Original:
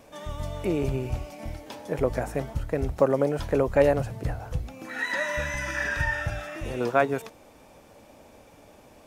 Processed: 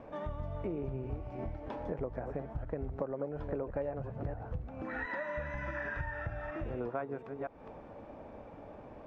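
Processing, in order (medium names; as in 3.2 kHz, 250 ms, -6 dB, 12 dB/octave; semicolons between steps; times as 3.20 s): chunks repeated in reverse 241 ms, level -11.5 dB; low-pass 1.4 kHz 12 dB/octave; compression 5:1, threshold -39 dBFS, peak gain reduction 21 dB; trim +3 dB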